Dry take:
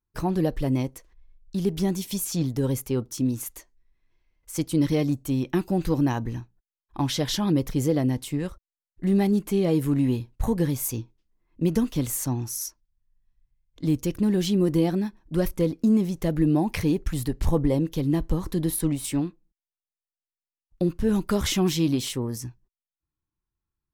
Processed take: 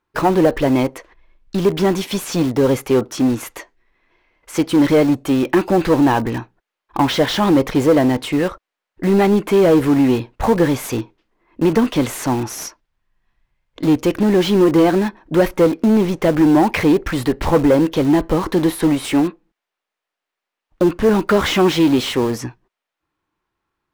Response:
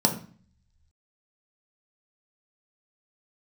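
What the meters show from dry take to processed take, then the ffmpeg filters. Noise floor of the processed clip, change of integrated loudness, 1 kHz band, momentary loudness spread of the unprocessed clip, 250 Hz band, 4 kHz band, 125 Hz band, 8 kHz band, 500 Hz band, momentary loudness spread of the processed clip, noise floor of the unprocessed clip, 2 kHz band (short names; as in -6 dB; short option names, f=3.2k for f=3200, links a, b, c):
-84 dBFS, +9.0 dB, +15.0 dB, 9 LU, +8.5 dB, +8.5 dB, +3.0 dB, +2.0 dB, +12.5 dB, 9 LU, under -85 dBFS, +14.5 dB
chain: -filter_complex "[0:a]asplit=2[a][b];[b]highpass=f=720:p=1,volume=20dB,asoftclip=type=tanh:threshold=-10dB[c];[a][c]amix=inputs=2:normalize=0,lowpass=f=2.7k:p=1,volume=-6dB,bass=f=250:g=-12,treble=f=4k:g=-9,asplit=2[d][e];[e]aeval=exprs='(mod(25.1*val(0)+1,2)-1)/25.1':c=same,volume=-10dB[f];[d][f]amix=inputs=2:normalize=0,lowshelf=f=340:g=10,volume=5dB"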